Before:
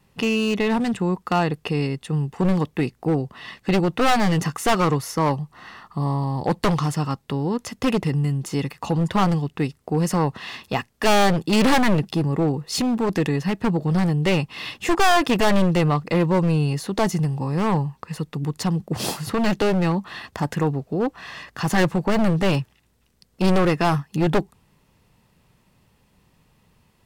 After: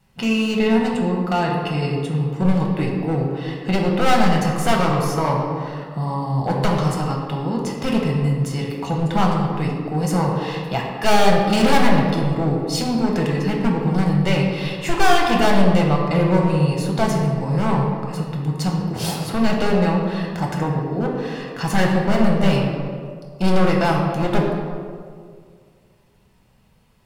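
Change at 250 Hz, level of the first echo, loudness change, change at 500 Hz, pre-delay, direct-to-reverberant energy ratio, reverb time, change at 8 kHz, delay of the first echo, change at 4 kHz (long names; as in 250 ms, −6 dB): +2.0 dB, no echo audible, +2.0 dB, +2.0 dB, 5 ms, −1.5 dB, 2.1 s, 0.0 dB, no echo audible, +1.5 dB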